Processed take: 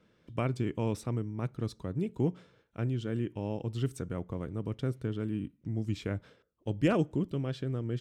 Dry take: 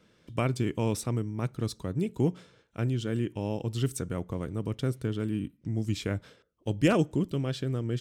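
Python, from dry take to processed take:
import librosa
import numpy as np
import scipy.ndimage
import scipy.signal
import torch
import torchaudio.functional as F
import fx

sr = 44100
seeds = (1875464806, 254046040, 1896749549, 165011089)

y = fx.high_shelf(x, sr, hz=4300.0, db=-10.5)
y = F.gain(torch.from_numpy(y), -3.0).numpy()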